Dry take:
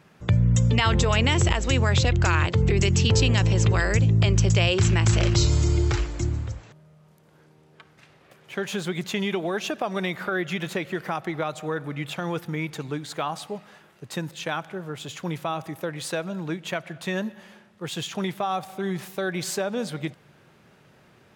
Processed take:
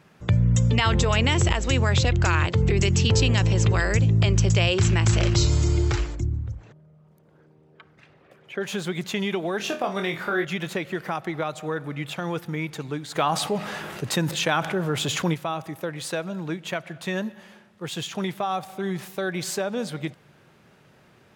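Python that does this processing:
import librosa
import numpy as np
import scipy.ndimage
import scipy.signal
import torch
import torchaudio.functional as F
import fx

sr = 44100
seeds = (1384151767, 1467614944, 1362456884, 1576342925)

y = fx.envelope_sharpen(x, sr, power=1.5, at=(6.14, 8.6), fade=0.02)
y = fx.room_flutter(y, sr, wall_m=4.2, rt60_s=0.26, at=(9.57, 10.45))
y = fx.env_flatten(y, sr, amount_pct=50, at=(13.15, 15.33), fade=0.02)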